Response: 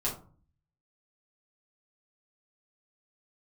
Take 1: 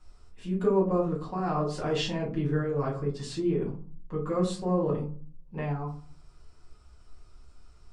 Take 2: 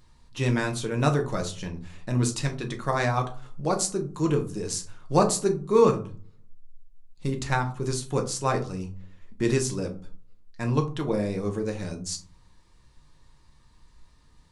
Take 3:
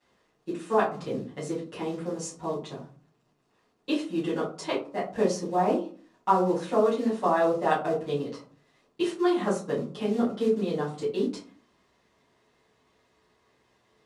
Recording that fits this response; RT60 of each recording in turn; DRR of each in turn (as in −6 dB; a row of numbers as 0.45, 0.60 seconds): 1; 0.40, 0.40, 0.40 seconds; −6.0, 3.5, −12.5 decibels